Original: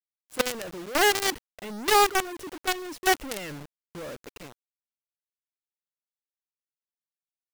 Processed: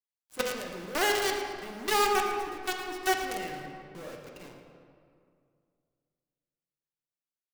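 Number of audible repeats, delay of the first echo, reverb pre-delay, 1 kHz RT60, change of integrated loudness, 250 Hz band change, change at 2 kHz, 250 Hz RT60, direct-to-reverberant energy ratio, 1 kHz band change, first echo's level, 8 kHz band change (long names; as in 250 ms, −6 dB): 1, 112 ms, 4 ms, 2.2 s, −4.5 dB, −3.5 dB, −4.0 dB, 2.6 s, 0.5 dB, −3.5 dB, −12.0 dB, −5.5 dB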